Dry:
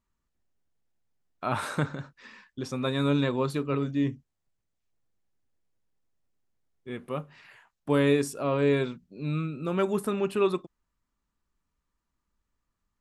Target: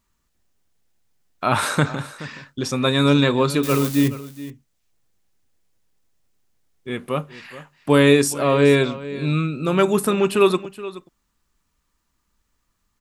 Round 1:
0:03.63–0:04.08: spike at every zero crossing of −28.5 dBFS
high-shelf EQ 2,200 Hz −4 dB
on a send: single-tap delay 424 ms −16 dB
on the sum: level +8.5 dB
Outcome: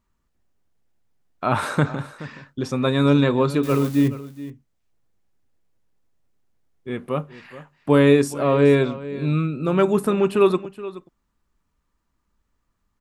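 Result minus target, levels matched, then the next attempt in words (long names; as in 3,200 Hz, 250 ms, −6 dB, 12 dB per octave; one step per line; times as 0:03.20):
4,000 Hz band −7.0 dB
0:03.63–0:04.08: spike at every zero crossing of −28.5 dBFS
high-shelf EQ 2,200 Hz +6.5 dB
on a send: single-tap delay 424 ms −16 dB
on the sum: level +8.5 dB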